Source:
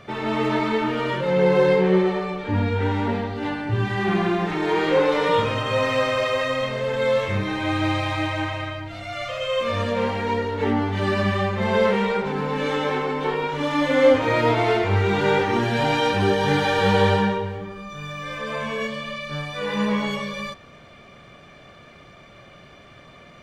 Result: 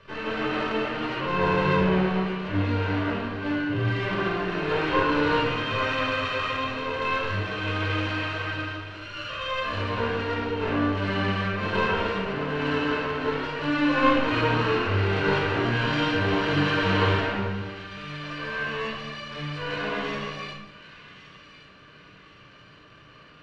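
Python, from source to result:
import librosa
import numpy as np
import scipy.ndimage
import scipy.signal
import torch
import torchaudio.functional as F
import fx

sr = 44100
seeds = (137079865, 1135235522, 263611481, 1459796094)

p1 = fx.lower_of_two(x, sr, delay_ms=0.7)
p2 = scipy.signal.sosfilt(scipy.signal.butter(2, 3100.0, 'lowpass', fs=sr, output='sos'), p1)
p3 = fx.tilt_shelf(p2, sr, db=-6.0, hz=940.0)
p4 = fx.small_body(p3, sr, hz=(300.0, 430.0, 620.0), ring_ms=35, db=8)
p5 = p4 + fx.echo_wet_highpass(p4, sr, ms=1118, feedback_pct=36, hz=1700.0, wet_db=-14.0, dry=0)
p6 = fx.room_shoebox(p5, sr, seeds[0], volume_m3=2700.0, walls='furnished', distance_m=5.1)
y = p6 * 10.0 ** (-8.5 / 20.0)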